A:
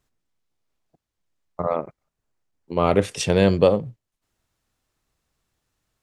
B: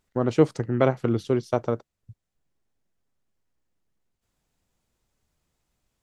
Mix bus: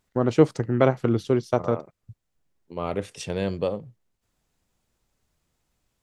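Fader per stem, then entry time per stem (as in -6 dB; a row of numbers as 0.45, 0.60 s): -10.0, +1.5 dB; 0.00, 0.00 s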